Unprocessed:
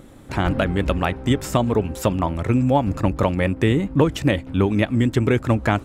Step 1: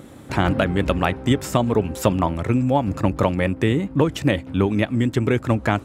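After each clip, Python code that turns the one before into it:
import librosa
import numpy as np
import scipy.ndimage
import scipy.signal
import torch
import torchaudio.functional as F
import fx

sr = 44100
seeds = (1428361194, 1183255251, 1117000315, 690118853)

y = scipy.signal.sosfilt(scipy.signal.butter(2, 75.0, 'highpass', fs=sr, output='sos'), x)
y = fx.rider(y, sr, range_db=4, speed_s=0.5)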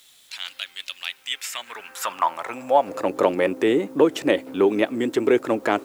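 y = fx.transient(x, sr, attack_db=-4, sustain_db=0)
y = fx.filter_sweep_highpass(y, sr, from_hz=3600.0, to_hz=380.0, start_s=1.03, end_s=3.23, q=2.1)
y = fx.quant_dither(y, sr, seeds[0], bits=10, dither='triangular')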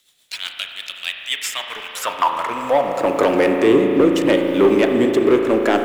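y = fx.rotary_switch(x, sr, hz=8.0, then_hz=0.75, switch_at_s=2.02)
y = fx.leveller(y, sr, passes=2)
y = fx.rev_spring(y, sr, rt60_s=3.7, pass_ms=(36,), chirp_ms=60, drr_db=3.0)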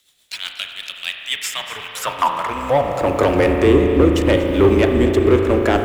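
y = fx.octave_divider(x, sr, octaves=2, level_db=-2.0)
y = y + 10.0 ** (-15.0 / 20.0) * np.pad(y, (int(239 * sr / 1000.0), 0))[:len(y)]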